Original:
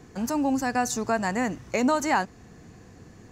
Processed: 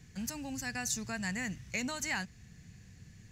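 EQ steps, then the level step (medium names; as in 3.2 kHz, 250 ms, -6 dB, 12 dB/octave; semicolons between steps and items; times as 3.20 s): high-order bell 580 Hz -16 dB 2.7 oct; -3.0 dB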